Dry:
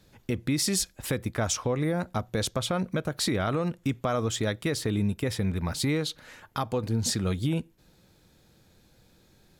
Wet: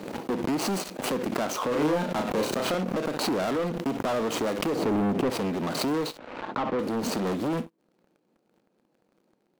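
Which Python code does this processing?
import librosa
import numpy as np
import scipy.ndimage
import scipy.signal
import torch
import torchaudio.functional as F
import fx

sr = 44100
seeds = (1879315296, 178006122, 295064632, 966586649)

y = scipy.signal.medfilt(x, 25)
y = np.clip(10.0 ** (29.5 / 20.0) * y, -1.0, 1.0) / 10.0 ** (29.5 / 20.0)
y = scipy.signal.sosfilt(scipy.signal.butter(4, 220.0, 'highpass', fs=sr, output='sos'), y)
y = fx.room_early_taps(y, sr, ms=(31, 59), db=(-18.0, -17.5))
y = 10.0 ** (-24.0 / 20.0) * np.tanh(y / 10.0 ** (-24.0 / 20.0))
y = fx.tilt_shelf(y, sr, db=8.0, hz=1200.0, at=(4.75, 5.3))
y = fx.leveller(y, sr, passes=3)
y = fx.doubler(y, sr, ms=33.0, db=-2.5, at=(1.68, 2.75))
y = fx.lowpass(y, sr, hz=2800.0, slope=12, at=(6.18, 6.79))
y = fx.pre_swell(y, sr, db_per_s=48.0)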